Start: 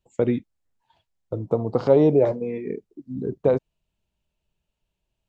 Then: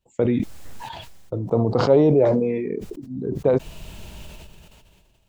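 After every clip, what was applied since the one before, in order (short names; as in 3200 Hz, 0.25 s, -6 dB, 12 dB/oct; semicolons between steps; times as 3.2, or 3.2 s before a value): sustainer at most 27 dB/s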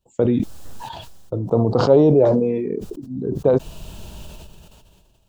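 bell 2100 Hz -10.5 dB 0.54 oct; gain +2.5 dB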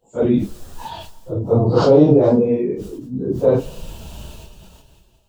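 phase scrambler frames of 0.1 s; reverb RT60 1.2 s, pre-delay 8 ms, DRR 17 dB; gain +2 dB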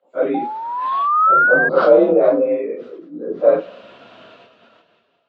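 painted sound rise, 0.34–1.69, 740–1600 Hz -21 dBFS; speaker cabinet 370–3200 Hz, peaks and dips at 370 Hz -3 dB, 550 Hz +3 dB, 850 Hz -9 dB, 1300 Hz +8 dB, 2100 Hz +5 dB, 2900 Hz -5 dB; frequency shift +43 Hz; gain +2 dB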